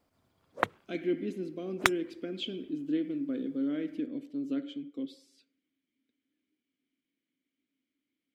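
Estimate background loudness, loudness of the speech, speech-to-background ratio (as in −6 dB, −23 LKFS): −32.0 LKFS, −35.5 LKFS, −3.5 dB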